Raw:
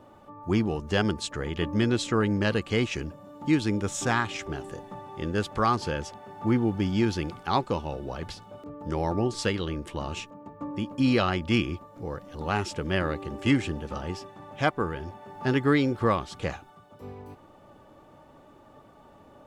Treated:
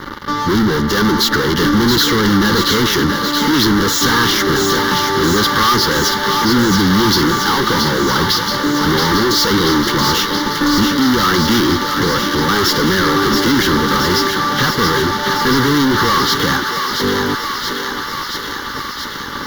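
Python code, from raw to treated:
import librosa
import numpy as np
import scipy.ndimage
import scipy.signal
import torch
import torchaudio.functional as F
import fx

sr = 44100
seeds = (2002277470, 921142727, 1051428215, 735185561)

y = scipy.signal.sosfilt(scipy.signal.butter(2, 210.0, 'highpass', fs=sr, output='sos'), x)
y = fx.fuzz(y, sr, gain_db=48.0, gate_db=-52.0)
y = fx.fixed_phaser(y, sr, hz=2500.0, stages=6)
y = fx.echo_thinned(y, sr, ms=677, feedback_pct=80, hz=560.0, wet_db=-5)
y = y * librosa.db_to_amplitude(3.5)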